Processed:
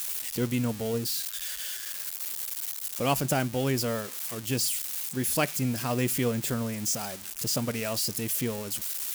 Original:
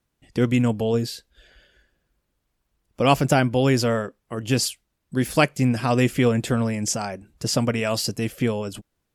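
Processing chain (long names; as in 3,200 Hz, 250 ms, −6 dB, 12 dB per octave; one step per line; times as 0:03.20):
spike at every zero crossing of −16 dBFS
on a send: convolution reverb RT60 0.35 s, pre-delay 5 ms, DRR 22 dB
on the sum: level −8.5 dB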